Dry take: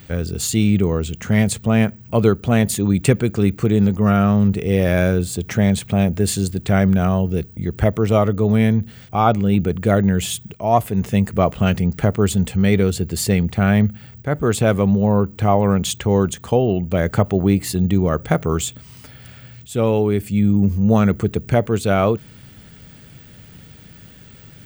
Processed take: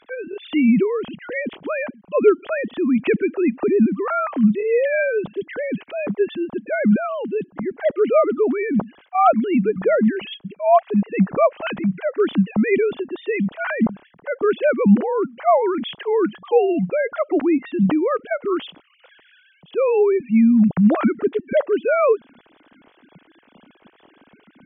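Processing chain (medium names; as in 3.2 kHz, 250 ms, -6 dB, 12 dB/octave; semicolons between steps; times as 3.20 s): formants replaced by sine waves; 9.53–9.97 s: hum notches 50/100/150/200 Hz; trim -2 dB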